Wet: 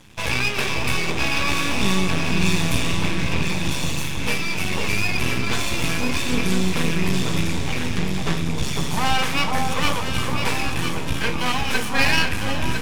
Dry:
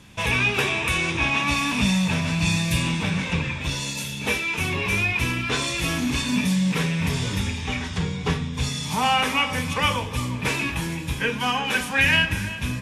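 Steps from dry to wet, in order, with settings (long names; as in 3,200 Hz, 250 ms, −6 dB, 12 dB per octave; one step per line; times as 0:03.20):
half-wave rectification
delay that swaps between a low-pass and a high-pass 502 ms, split 1,200 Hz, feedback 65%, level −2 dB
level +3.5 dB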